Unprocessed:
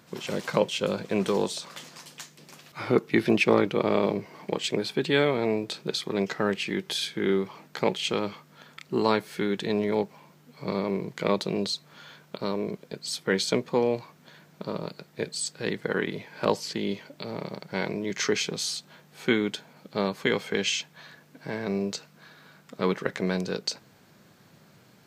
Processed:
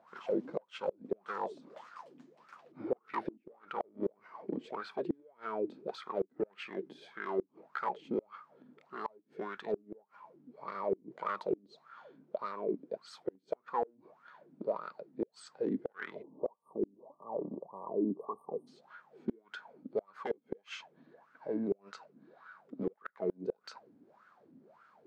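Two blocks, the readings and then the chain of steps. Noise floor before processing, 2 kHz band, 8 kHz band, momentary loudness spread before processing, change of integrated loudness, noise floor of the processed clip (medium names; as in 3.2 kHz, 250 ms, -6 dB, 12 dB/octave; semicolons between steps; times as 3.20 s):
-57 dBFS, -16.0 dB, under -25 dB, 13 LU, -11.5 dB, -71 dBFS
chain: overload inside the chain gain 21.5 dB; wah-wah 1.7 Hz 260–1400 Hz, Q 9.5; peaking EQ 220 Hz +5 dB 0.23 oct; spectral selection erased 16.23–18.67 s, 1.2–8.5 kHz; inverted gate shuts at -31 dBFS, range -33 dB; trim +9.5 dB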